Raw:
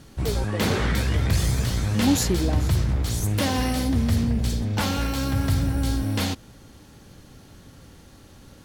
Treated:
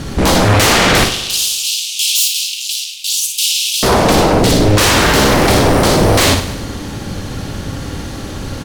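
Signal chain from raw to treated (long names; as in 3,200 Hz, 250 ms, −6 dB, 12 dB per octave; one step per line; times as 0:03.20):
high-shelf EQ 11,000 Hz −10 dB
sine wavefolder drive 17 dB, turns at −10.5 dBFS
0:01.04–0:03.83: Butterworth high-pass 2,700 Hz 72 dB per octave
ambience of single reflections 48 ms −12.5 dB, 58 ms −7 dB
feedback echo at a low word length 100 ms, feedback 55%, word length 8 bits, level −13 dB
level +2 dB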